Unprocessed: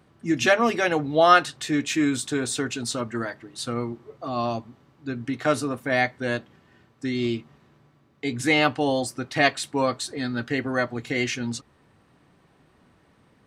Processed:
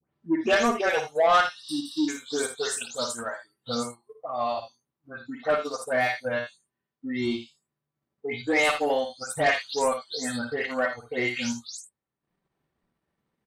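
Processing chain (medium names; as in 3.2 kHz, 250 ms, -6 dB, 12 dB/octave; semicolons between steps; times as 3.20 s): delay that grows with frequency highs late, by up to 236 ms; spectral noise reduction 19 dB; spectral replace 1.66–2.06 s, 340–8000 Hz before; transient shaper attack +2 dB, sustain -10 dB; saturation -15 dBFS, distortion -13 dB; early reflections 55 ms -8.5 dB, 80 ms -13.5 dB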